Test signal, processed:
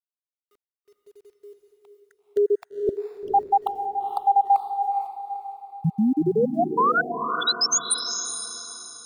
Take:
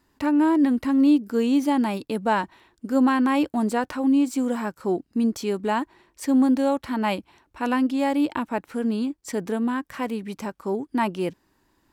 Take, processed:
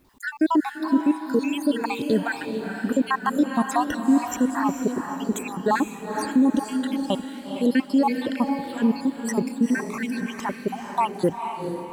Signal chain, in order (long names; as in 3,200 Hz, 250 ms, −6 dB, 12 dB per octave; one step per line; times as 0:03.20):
time-frequency cells dropped at random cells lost 69%
brickwall limiter −20 dBFS
bit-depth reduction 12 bits, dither none
on a send: feedback delay with all-pass diffusion 460 ms, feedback 41%, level −6 dB
on the sum: level +8 dB